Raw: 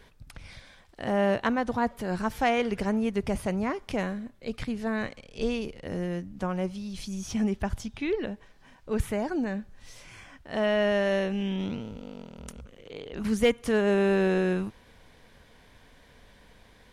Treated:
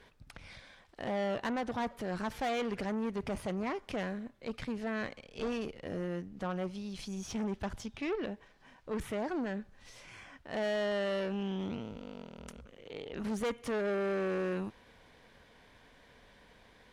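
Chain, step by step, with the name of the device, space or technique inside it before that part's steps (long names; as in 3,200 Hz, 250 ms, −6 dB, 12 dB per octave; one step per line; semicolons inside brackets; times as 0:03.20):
tube preamp driven hard (tube saturation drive 29 dB, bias 0.45; low-shelf EQ 170 Hz −7 dB; high-shelf EQ 6,800 Hz −8.5 dB)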